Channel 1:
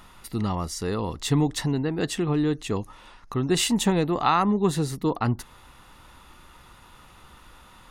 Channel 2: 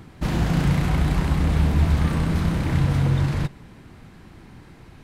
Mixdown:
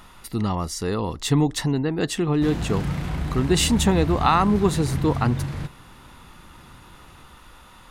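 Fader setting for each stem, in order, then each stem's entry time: +2.5 dB, -6.5 dB; 0.00 s, 2.20 s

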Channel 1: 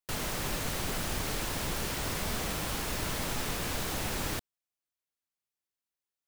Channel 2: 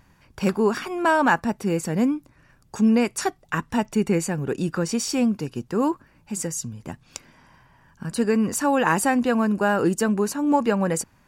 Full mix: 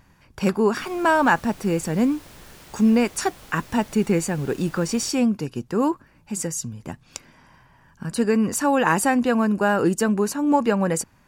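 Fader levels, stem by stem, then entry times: -12.0 dB, +1.0 dB; 0.70 s, 0.00 s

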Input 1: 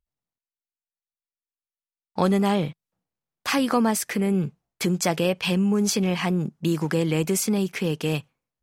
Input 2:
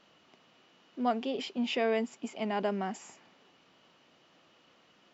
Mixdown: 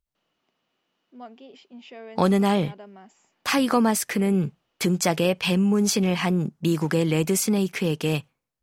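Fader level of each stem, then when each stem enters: +1.0 dB, -12.5 dB; 0.00 s, 0.15 s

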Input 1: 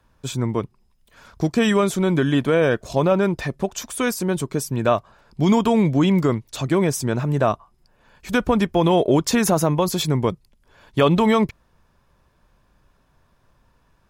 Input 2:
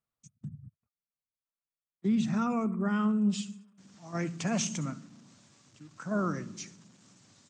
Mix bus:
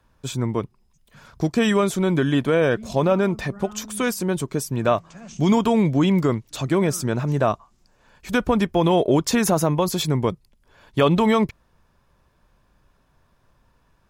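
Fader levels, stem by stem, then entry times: -1.0 dB, -11.5 dB; 0.00 s, 0.70 s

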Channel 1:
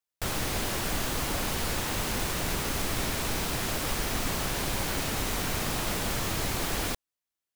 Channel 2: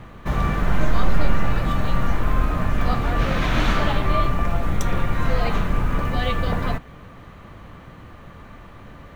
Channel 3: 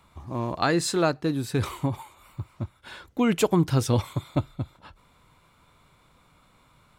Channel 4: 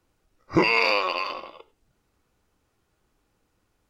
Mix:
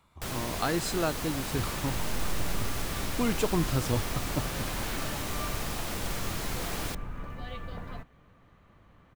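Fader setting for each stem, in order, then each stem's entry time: -5.0 dB, -17.0 dB, -6.5 dB, mute; 0.00 s, 1.25 s, 0.00 s, mute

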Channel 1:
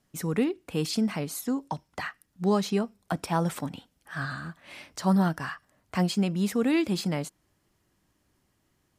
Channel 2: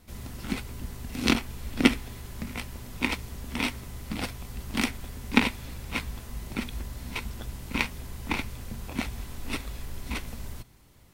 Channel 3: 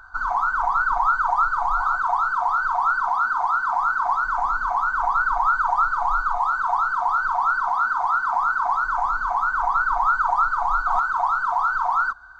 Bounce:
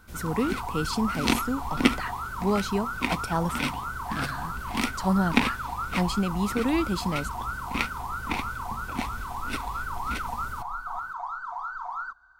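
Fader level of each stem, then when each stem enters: -1.0 dB, -1.0 dB, -13.0 dB; 0.00 s, 0.00 s, 0.00 s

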